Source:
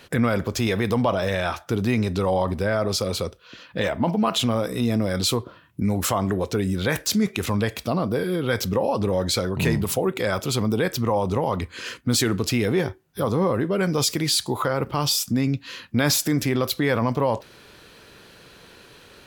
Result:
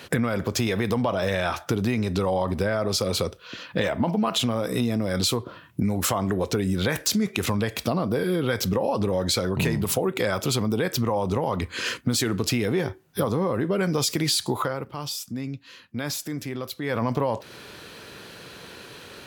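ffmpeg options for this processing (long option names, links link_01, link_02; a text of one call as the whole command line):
ffmpeg -i in.wav -filter_complex "[0:a]asplit=3[link_01][link_02][link_03];[link_01]atrim=end=14.9,asetpts=PTS-STARTPTS,afade=type=out:start_time=14.55:duration=0.35:curve=qua:silence=0.177828[link_04];[link_02]atrim=start=14.9:end=16.77,asetpts=PTS-STARTPTS,volume=-15dB[link_05];[link_03]atrim=start=16.77,asetpts=PTS-STARTPTS,afade=type=in:duration=0.35:curve=qua:silence=0.177828[link_06];[link_04][link_05][link_06]concat=n=3:v=0:a=1,acompressor=threshold=-26dB:ratio=6,highpass=75,volume=5.5dB" out.wav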